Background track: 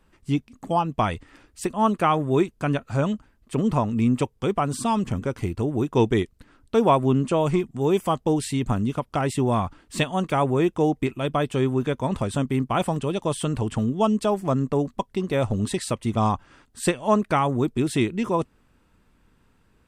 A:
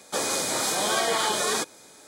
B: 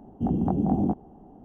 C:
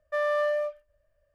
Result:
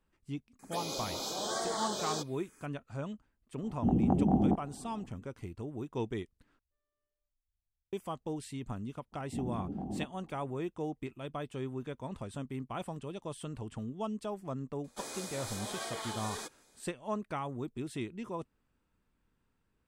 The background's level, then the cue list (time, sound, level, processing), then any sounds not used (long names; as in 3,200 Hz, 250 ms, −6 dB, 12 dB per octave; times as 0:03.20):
background track −16 dB
0:00.59: mix in A −8.5 dB + phaser swept by the level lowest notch 580 Hz, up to 2,600 Hz, full sweep at −20.5 dBFS
0:03.62: mix in B −3 dB
0:06.59: overwrite with C −15.5 dB + inverse Chebyshev low-pass filter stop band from 560 Hz
0:09.12: mix in B −11.5 dB + brickwall limiter −19.5 dBFS
0:14.84: mix in A −16 dB